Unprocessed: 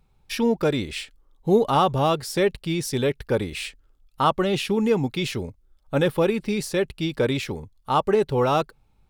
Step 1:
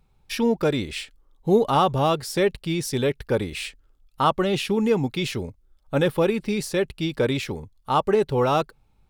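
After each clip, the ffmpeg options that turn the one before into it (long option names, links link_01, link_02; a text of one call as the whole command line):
ffmpeg -i in.wav -af anull out.wav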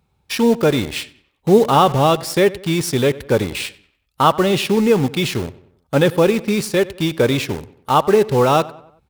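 ffmpeg -i in.wav -filter_complex "[0:a]highpass=frequency=57:width=0.5412,highpass=frequency=57:width=1.3066,asplit=2[link_01][link_02];[link_02]acrusher=bits=4:mix=0:aa=0.000001,volume=-3.5dB[link_03];[link_01][link_03]amix=inputs=2:normalize=0,asplit=2[link_04][link_05];[link_05]adelay=94,lowpass=frequency=3500:poles=1,volume=-19dB,asplit=2[link_06][link_07];[link_07]adelay=94,lowpass=frequency=3500:poles=1,volume=0.46,asplit=2[link_08][link_09];[link_09]adelay=94,lowpass=frequency=3500:poles=1,volume=0.46,asplit=2[link_10][link_11];[link_11]adelay=94,lowpass=frequency=3500:poles=1,volume=0.46[link_12];[link_04][link_06][link_08][link_10][link_12]amix=inputs=5:normalize=0,volume=2dB" out.wav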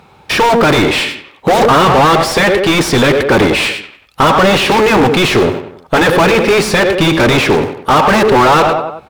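ffmpeg -i in.wav -filter_complex "[0:a]afftfilt=real='re*lt(hypot(re,im),1.26)':imag='im*lt(hypot(re,im),1.26)':win_size=1024:overlap=0.75,aecho=1:1:113:0.0794,asplit=2[link_01][link_02];[link_02]highpass=frequency=720:poles=1,volume=34dB,asoftclip=type=tanh:threshold=-4dB[link_03];[link_01][link_03]amix=inputs=2:normalize=0,lowpass=frequency=1600:poles=1,volume=-6dB,volume=3.5dB" out.wav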